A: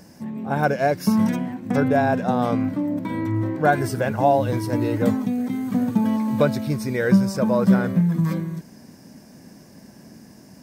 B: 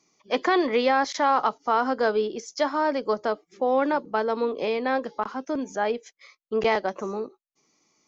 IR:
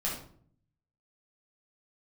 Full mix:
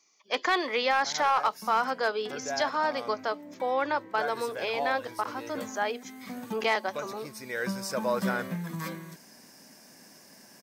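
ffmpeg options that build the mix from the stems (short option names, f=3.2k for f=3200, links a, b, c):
-filter_complex "[0:a]adelay=550,volume=1.5dB[a];[1:a]volume=2dB,asplit=2[b][c];[c]apad=whole_len=492598[d];[a][d]sidechaincompress=threshold=-28dB:ratio=8:attack=16:release=1300[e];[e][b]amix=inputs=2:normalize=0,highpass=f=1.3k:p=1,asoftclip=type=hard:threshold=-16.5dB"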